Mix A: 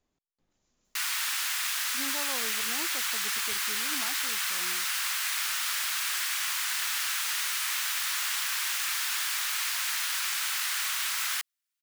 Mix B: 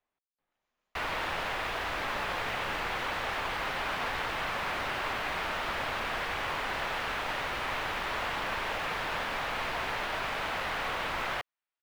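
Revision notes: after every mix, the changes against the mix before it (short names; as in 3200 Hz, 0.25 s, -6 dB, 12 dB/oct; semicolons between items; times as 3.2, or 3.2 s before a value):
background: remove HPF 1300 Hz 24 dB/oct; master: add three-band isolator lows -16 dB, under 580 Hz, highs -24 dB, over 3200 Hz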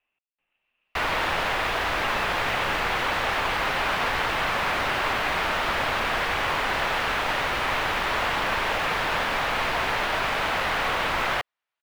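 speech: add synth low-pass 2700 Hz, resonance Q 13; background +8.0 dB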